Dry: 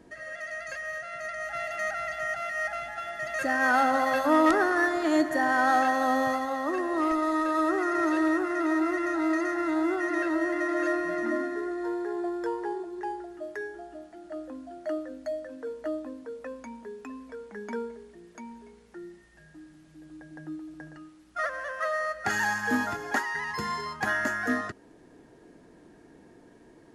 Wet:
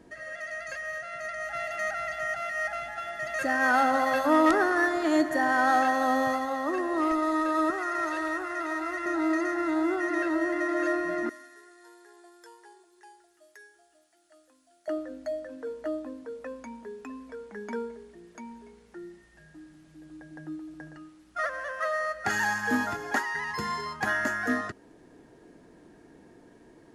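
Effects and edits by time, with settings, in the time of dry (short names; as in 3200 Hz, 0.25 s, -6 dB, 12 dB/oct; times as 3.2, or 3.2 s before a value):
7.7–9.06 bell 250 Hz -13 dB 1.5 oct
11.29–14.88 pre-emphasis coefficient 0.97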